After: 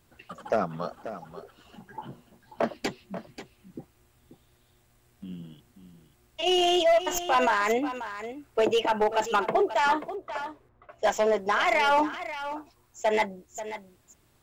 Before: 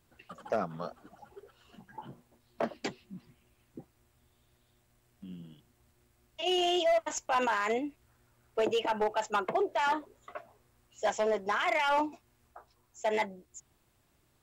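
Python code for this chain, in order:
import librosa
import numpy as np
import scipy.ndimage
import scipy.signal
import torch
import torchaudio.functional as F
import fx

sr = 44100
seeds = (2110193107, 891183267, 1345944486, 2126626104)

y = fx.tracing_dist(x, sr, depth_ms=0.033)
y = fx.env_lowpass(y, sr, base_hz=740.0, full_db=-41.5, at=(10.15, 11.06))
y = y + 10.0 ** (-12.0 / 20.0) * np.pad(y, (int(536 * sr / 1000.0), 0))[:len(y)]
y = F.gain(torch.from_numpy(y), 5.5).numpy()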